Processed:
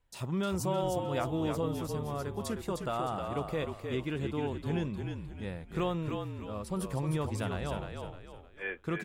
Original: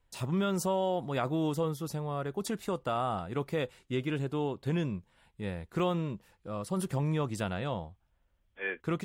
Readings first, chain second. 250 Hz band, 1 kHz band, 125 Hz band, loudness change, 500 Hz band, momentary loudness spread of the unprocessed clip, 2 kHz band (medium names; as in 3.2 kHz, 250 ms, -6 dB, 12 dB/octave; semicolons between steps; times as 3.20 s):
-1.5 dB, -1.5 dB, -1.0 dB, -1.5 dB, -1.0 dB, 9 LU, -1.5 dB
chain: frequency-shifting echo 308 ms, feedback 39%, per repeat -44 Hz, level -5 dB; trim -2.5 dB